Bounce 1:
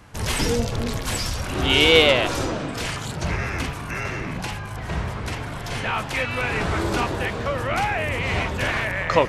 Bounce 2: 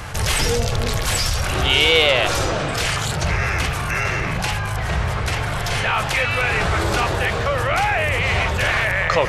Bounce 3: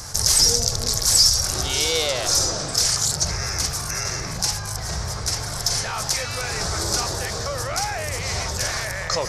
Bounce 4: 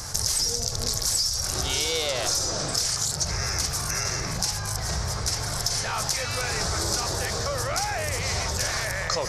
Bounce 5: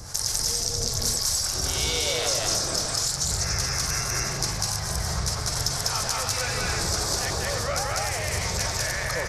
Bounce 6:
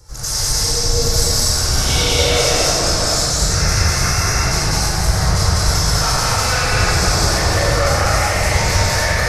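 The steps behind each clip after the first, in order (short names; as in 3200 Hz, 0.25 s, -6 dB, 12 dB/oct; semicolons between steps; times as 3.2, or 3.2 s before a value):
bell 260 Hz -11.5 dB 1 oct; notch 980 Hz, Q 17; fast leveller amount 50%
resonant high shelf 3900 Hz +11.5 dB, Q 3; gain -7 dB
compressor 6:1, threshold -22 dBFS, peak gain reduction 10.5 dB
harmonic tremolo 2.4 Hz, depth 70%, crossover 610 Hz; loudspeakers at several distances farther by 68 m 0 dB, 100 m -5 dB
reverb RT60 2.2 s, pre-delay 86 ms, DRR -19 dB; gain -10 dB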